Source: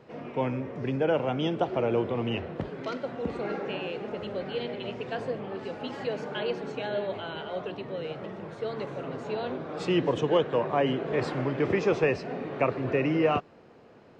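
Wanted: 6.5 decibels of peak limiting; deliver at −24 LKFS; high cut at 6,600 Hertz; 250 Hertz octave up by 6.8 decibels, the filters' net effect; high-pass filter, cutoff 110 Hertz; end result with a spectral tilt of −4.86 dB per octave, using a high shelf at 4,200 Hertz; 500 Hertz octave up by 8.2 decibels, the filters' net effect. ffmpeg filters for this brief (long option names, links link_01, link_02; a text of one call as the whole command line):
ffmpeg -i in.wav -af "highpass=110,lowpass=6600,equalizer=frequency=250:width_type=o:gain=6,equalizer=frequency=500:width_type=o:gain=8,highshelf=frequency=4200:gain=-4.5,volume=0.5dB,alimiter=limit=-11.5dB:level=0:latency=1" out.wav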